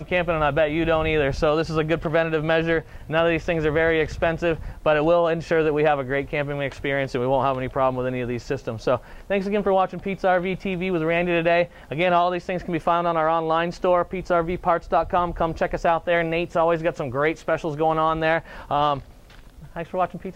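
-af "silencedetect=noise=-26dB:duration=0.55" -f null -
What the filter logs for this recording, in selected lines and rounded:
silence_start: 18.99
silence_end: 19.76 | silence_duration: 0.78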